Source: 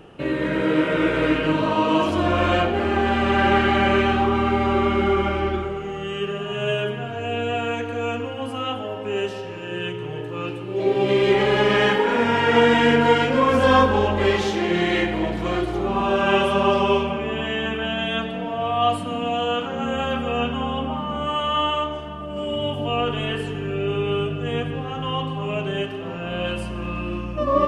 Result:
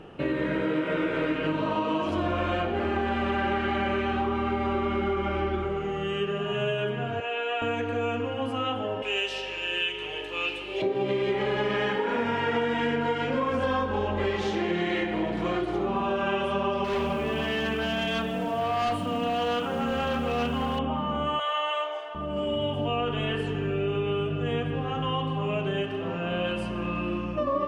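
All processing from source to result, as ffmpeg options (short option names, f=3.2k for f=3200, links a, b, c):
-filter_complex "[0:a]asettb=1/sr,asplit=3[a][b][c];[a]atrim=end=7.204[d];[b]atrim=start=7.2:end=7.62,asetpts=PTS-STARTPTS,afade=t=in:d=0.004:c=qsin,afade=t=out:st=0.416:d=0.004:c=qsin,highpass=690,lowpass=5.4k,asplit=2[e][f];[f]adelay=15,volume=-7.5dB[g];[e][g]amix=inputs=2:normalize=0,atrim=end_sample=18522[h];[c]atrim=start=7.616[i];[d][h]acrossfade=d=0.004:c1=hsin:c2=qsin[j];[j][i]acrossfade=d=0.004:c1=qsin:c2=hsin,asettb=1/sr,asplit=3[k][l][m];[k]atrim=end=9.024[n];[l]atrim=start=9.02:end=10.82,asetpts=PTS-STARTPTS,afade=t=in:d=0.004:c=qsin,afade=t=out:st=1.796:d=0.004:c=qsin,highpass=540,highshelf=f=1.9k:t=q:w=1.5:g=8.5,aeval=exprs='val(0)+0.00282*(sin(2*PI*50*n/s)+sin(2*PI*2*50*n/s)/2+sin(2*PI*3*50*n/s)/3+sin(2*PI*4*50*n/s)/4+sin(2*PI*5*50*n/s)/5)':c=same[o];[m]atrim=start=10.816[p];[n][o]acrossfade=d=0.004:c1=hsin:c2=qsin[q];[q][p]acrossfade=d=0.004:c1=qsin:c2=hsin,asettb=1/sr,asplit=3[r][s][t];[r]atrim=end=16.844[u];[s]atrim=start=16.84:end=20.79,asetpts=PTS-STARTPTS,afade=t=in:d=0.004:c=qsin,afade=t=out:st=3.946:d=0.004:c=qsin,asoftclip=type=hard:threshold=-21dB,acrusher=bits=8:dc=4:mix=0:aa=0.000001[v];[t]atrim=start=20.786[w];[u][v]acrossfade=d=0.004:c1=hsin:c2=qsin[x];[x][w]acrossfade=d=0.004:c1=qsin:c2=hsin,asettb=1/sr,asplit=3[y][z][aa];[y]atrim=end=21.394[ab];[z]atrim=start=21.39:end=22.15,asetpts=PTS-STARTPTS,afade=t=in:d=0.004:c=qsin,afade=t=out:st=0.756:d=0.004:c=qsin,highpass=f=570:w=0.5412,highpass=f=570:w=1.3066,aecho=1:1:6.2:0.49,atrim=end_sample=33516[ac];[aa]atrim=start=22.146[ad];[ab][ac]acrossfade=d=0.004:c1=hsin:c2=qsin[ae];[ae][ad]acrossfade=d=0.004:c1=qsin:c2=hsin,highshelf=f=7k:g=-12,bandreject=f=60:t=h:w=6,bandreject=f=120:t=h:w=6,acompressor=threshold=-24dB:ratio=6"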